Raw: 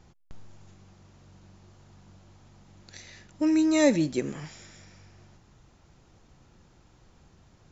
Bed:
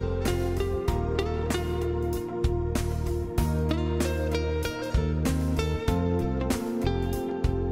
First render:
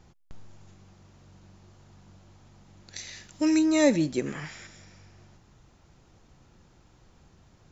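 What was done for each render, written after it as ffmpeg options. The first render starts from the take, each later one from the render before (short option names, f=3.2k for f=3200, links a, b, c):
-filter_complex "[0:a]asettb=1/sr,asplit=3[a][b][c];[a]atrim=end=2.964[d];[b]atrim=start=2.96:end=3.59,asetpts=PTS-STARTPTS,afade=t=in:d=0.004:c=qsin,afade=t=out:st=0.626:d=0.004:c=qsin,highshelf=f=2.3k:g=10.5[e];[c]atrim=start=3.586[f];[d][e]acrossfade=d=0.004:c1=hsin:c2=qsin[g];[g][f]acrossfade=d=0.004:c1=qsin:c2=hsin,asettb=1/sr,asplit=3[h][i][j];[h]atrim=end=4.264[k];[i]atrim=start=4.26:end=4.67,asetpts=PTS-STARTPTS,afade=t=in:d=0.004:c=qsin,afade=t=out:st=0.406:d=0.004:c=qsin,equalizer=f=1.8k:w=0.95:g=9[l];[j]atrim=start=4.666[m];[k][l]acrossfade=d=0.004:c1=hsin:c2=qsin[n];[n][m]acrossfade=d=0.004:c1=qsin:c2=hsin"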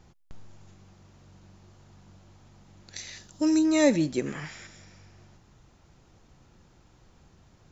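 -filter_complex "[0:a]asettb=1/sr,asplit=3[a][b][c];[a]atrim=end=3.184[d];[b]atrim=start=3.18:end=3.65,asetpts=PTS-STARTPTS,afade=t=in:d=0.004:c=qsin,afade=t=out:st=0.466:d=0.004:c=qsin,equalizer=f=2.2k:w=1.9:g=-11[e];[c]atrim=start=3.646[f];[d][e]acrossfade=d=0.004:c1=hsin:c2=qsin[g];[g][f]acrossfade=d=0.004:c1=qsin:c2=hsin"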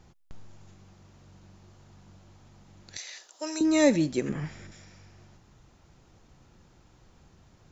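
-filter_complex "[0:a]asettb=1/sr,asplit=3[a][b][c];[a]atrim=end=2.974[d];[b]atrim=start=2.97:end=3.61,asetpts=PTS-STARTPTS,afade=t=in:d=0.004:c=qsin,afade=t=out:st=0.636:d=0.004:c=qsin,highpass=f=480:w=0.5412,highpass=f=480:w=1.3066[e];[c]atrim=start=3.606[f];[d][e]acrossfade=d=0.004:c1=hsin:c2=qsin[g];[g][f]acrossfade=d=0.004:c1=qsin:c2=hsin,asettb=1/sr,asplit=3[h][i][j];[h]atrim=end=4.294[k];[i]atrim=start=4.29:end=4.72,asetpts=PTS-STARTPTS,afade=t=in:d=0.004:c=qsin,afade=t=out:st=0.426:d=0.004:c=qsin,tiltshelf=f=680:g=7.5[l];[j]atrim=start=4.716[m];[k][l]acrossfade=d=0.004:c1=hsin:c2=qsin[n];[n][m]acrossfade=d=0.004:c1=qsin:c2=hsin"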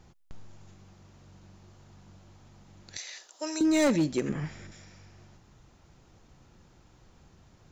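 -af "volume=19.5dB,asoftclip=hard,volume=-19.5dB"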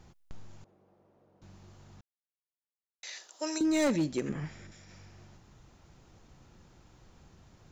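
-filter_complex "[0:a]asettb=1/sr,asplit=3[a][b][c];[a]atrim=end=0.644[d];[b]atrim=start=0.64:end=1.42,asetpts=PTS-STARTPTS,afade=t=in:d=0.004:c=qsin,afade=t=out:st=0.776:d=0.004:c=qsin,bandpass=f=510:t=q:w=1.7[e];[c]atrim=start=1.416[f];[d][e]acrossfade=d=0.004:c1=hsin:c2=qsin[g];[g][f]acrossfade=d=0.004:c1=qsin:c2=hsin,asplit=5[h][i][j][k][l];[h]atrim=end=2.01,asetpts=PTS-STARTPTS,afade=t=out:st=2.006:d=0.004:c=hsin[m];[i]atrim=start=2.01:end=3.03,asetpts=PTS-STARTPTS,volume=0[n];[j]atrim=start=3.03:end=3.582,asetpts=PTS-STARTPTS,afade=t=in:d=0.004:c=hsin[o];[k]atrim=start=3.578:end=4.892,asetpts=PTS-STARTPTS,volume=-3.5dB[p];[l]atrim=start=4.888[q];[m][n][o]concat=n=3:v=0:a=1[r];[r][p]acrossfade=d=0.004:c1=hsin:c2=hsin[s];[s][q]acrossfade=d=0.004:c1=hsin:c2=hsin"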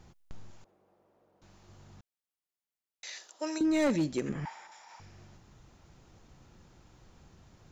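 -filter_complex "[0:a]asettb=1/sr,asplit=3[a][b][c];[a]atrim=end=0.504[d];[b]atrim=start=0.5:end=1.69,asetpts=PTS-STARTPTS,afade=t=in:d=0.004:c=qsin,afade=t=out:st=1.186:d=0.004:c=qsin,equalizer=f=120:w=0.5:g=-8.5[e];[c]atrim=start=1.686[f];[d][e]acrossfade=d=0.004:c1=hsin:c2=qsin[g];[g][f]acrossfade=d=0.004:c1=qsin:c2=hsin,asettb=1/sr,asplit=3[h][i][j];[h]atrim=end=3.324[k];[i]atrim=start=3.32:end=3.9,asetpts=PTS-STARTPTS,afade=t=in:d=0.004:c=qsin,afade=t=out:st=0.576:d=0.004:c=qsin,bass=f=250:g=1,treble=f=4k:g=-7[l];[j]atrim=start=3.896[m];[k][l]acrossfade=d=0.004:c1=hsin:c2=qsin[n];[n][m]acrossfade=d=0.004:c1=qsin:c2=hsin,asettb=1/sr,asplit=3[o][p][q];[o]atrim=end=4.454[r];[p]atrim=start=4.45:end=5,asetpts=PTS-STARTPTS,afade=t=in:d=0.004:c=qsin,afade=t=out:st=0.546:d=0.004:c=qsin,highpass=f=880:t=q:w=11[s];[q]atrim=start=4.996[t];[r][s]acrossfade=d=0.004:c1=hsin:c2=qsin[u];[u][t]acrossfade=d=0.004:c1=qsin:c2=hsin"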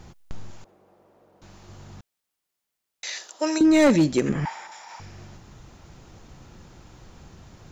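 -af "volume=10.5dB"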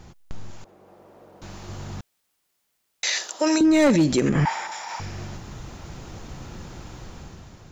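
-af "alimiter=limit=-21.5dB:level=0:latency=1:release=64,dynaudnorm=f=310:g=5:m=9dB"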